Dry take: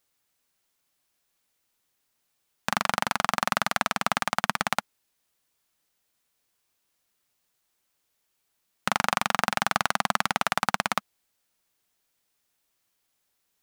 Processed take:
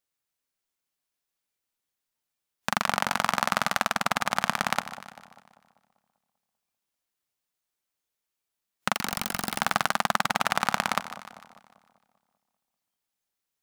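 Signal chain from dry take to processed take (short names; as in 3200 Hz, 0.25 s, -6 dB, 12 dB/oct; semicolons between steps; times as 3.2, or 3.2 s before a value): 8.95–9.6 wrapped overs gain 15.5 dB; spectral noise reduction 10 dB; split-band echo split 940 Hz, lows 0.196 s, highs 0.15 s, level -13 dB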